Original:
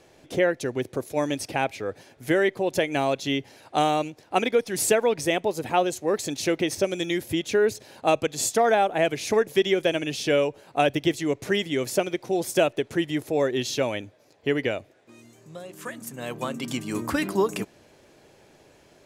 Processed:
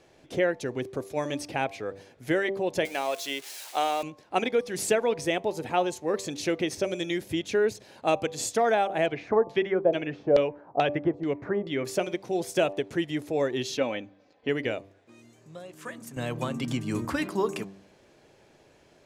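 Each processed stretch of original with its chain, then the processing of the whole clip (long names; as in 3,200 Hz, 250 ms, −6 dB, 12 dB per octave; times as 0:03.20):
0:02.85–0:04.03: spike at every zero crossing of −25.5 dBFS + high-pass filter 490 Hz
0:09.06–0:11.85: parametric band 3,000 Hz −7.5 dB 1.1 octaves + auto-filter low-pass saw down 2.3 Hz 570–4,200 Hz
0:13.77–0:14.49: low-pass filter 4,300 Hz + parametric band 74 Hz −8 dB 0.86 octaves + comb filter 3.9 ms, depth 45%
0:16.16–0:17.05: parametric band 63 Hz +14.5 dB 2 octaves + multiband upward and downward compressor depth 70%
whole clip: high-shelf EQ 11,000 Hz −11 dB; hum removal 97.63 Hz, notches 12; level −3 dB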